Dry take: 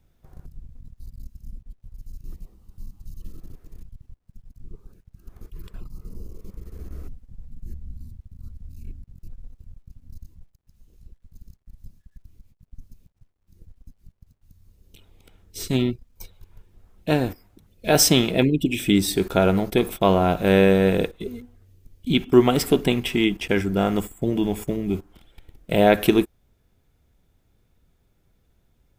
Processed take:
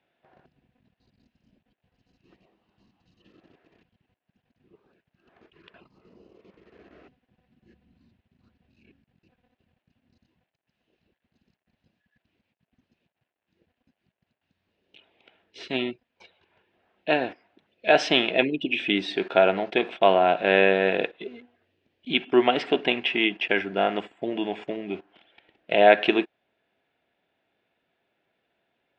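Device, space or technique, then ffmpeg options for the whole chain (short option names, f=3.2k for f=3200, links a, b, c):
phone earpiece: -af "highpass=400,equalizer=f=470:t=q:w=4:g=-3,equalizer=f=670:t=q:w=4:g=5,equalizer=f=1.2k:t=q:w=4:g=-5,equalizer=f=1.7k:t=q:w=4:g=5,equalizer=f=2.7k:t=q:w=4:g=6,lowpass=f=3.6k:w=0.5412,lowpass=f=3.6k:w=1.3066"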